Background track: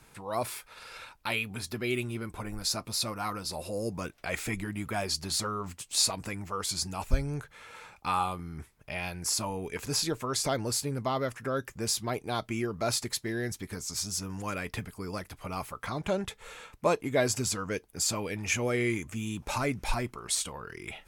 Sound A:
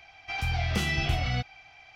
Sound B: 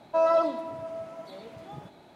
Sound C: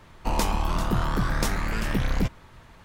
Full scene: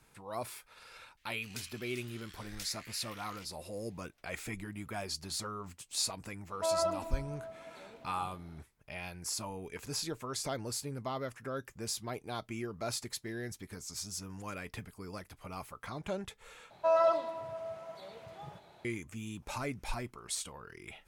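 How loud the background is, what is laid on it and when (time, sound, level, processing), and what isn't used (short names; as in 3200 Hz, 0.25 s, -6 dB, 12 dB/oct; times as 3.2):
background track -7.5 dB
1.17 add C -12.5 dB + inverse Chebyshev high-pass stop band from 790 Hz, stop band 50 dB
6.48 add B -9 dB
16.7 replace with B -3 dB + bell 270 Hz -14 dB 0.73 oct
not used: A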